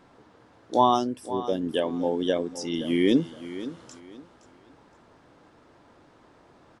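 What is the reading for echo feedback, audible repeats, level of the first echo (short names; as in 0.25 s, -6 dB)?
27%, 2, -14.0 dB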